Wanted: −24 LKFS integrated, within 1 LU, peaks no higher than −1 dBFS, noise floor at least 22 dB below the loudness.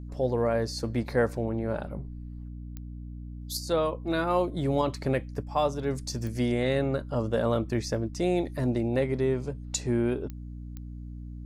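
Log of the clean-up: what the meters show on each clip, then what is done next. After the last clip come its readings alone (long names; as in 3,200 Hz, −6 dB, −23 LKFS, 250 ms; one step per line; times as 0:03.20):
number of clicks 4; mains hum 60 Hz; hum harmonics up to 300 Hz; level of the hum −37 dBFS; integrated loudness −29.0 LKFS; sample peak −13.5 dBFS; target loudness −24.0 LKFS
→ click removal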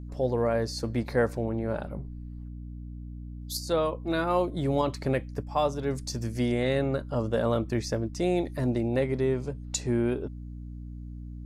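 number of clicks 0; mains hum 60 Hz; hum harmonics up to 300 Hz; level of the hum −37 dBFS
→ hum removal 60 Hz, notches 5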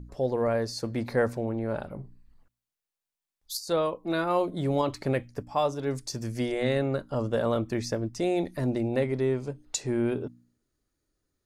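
mains hum none found; integrated loudness −29.0 LKFS; sample peak −14.0 dBFS; target loudness −24.0 LKFS
→ level +5 dB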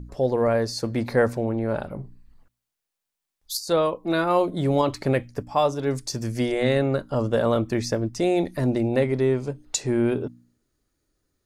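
integrated loudness −24.0 LKFS; sample peak −9.0 dBFS; background noise floor −84 dBFS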